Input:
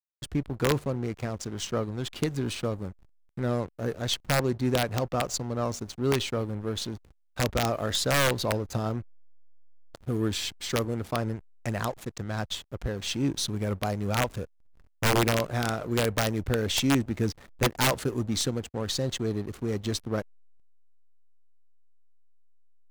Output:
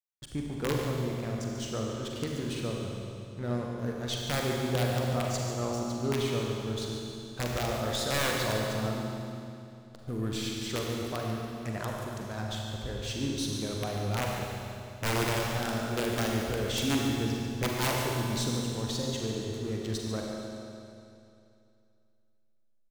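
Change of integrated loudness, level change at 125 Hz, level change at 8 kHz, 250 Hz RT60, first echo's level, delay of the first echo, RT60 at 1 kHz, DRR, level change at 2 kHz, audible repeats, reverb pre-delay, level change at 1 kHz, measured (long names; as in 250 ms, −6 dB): −3.0 dB, −2.5 dB, −3.5 dB, 2.6 s, −11.0 dB, 143 ms, 2.6 s, −1.5 dB, −3.5 dB, 1, 38 ms, −3.0 dB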